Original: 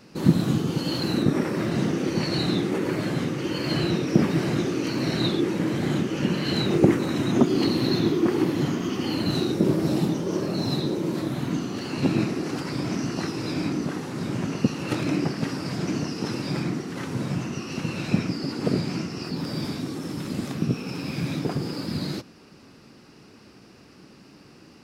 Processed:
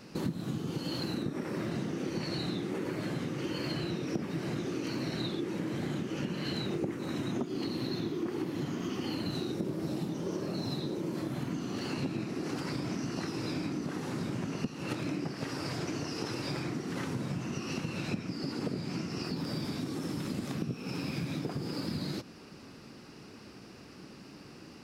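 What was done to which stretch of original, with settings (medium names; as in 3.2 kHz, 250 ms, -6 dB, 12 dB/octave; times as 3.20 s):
11.00–11.60 s: band-stop 3.8 kHz
15.35–16.75 s: peaking EQ 200 Hz -9 dB
whole clip: compression 6:1, threshold -32 dBFS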